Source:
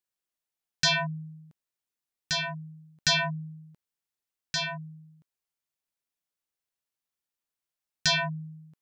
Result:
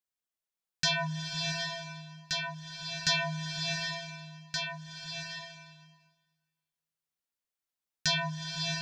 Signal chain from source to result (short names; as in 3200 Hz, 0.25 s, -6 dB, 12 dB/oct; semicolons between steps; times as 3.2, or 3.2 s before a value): flange 0.43 Hz, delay 3.7 ms, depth 2.6 ms, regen +78%; bloom reverb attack 0.7 s, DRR 2.5 dB